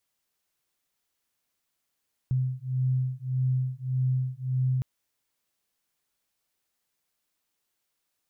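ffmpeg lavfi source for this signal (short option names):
-f lavfi -i "aevalsrc='0.0422*(sin(2*PI*128*t)+sin(2*PI*129.7*t))':d=2.51:s=44100"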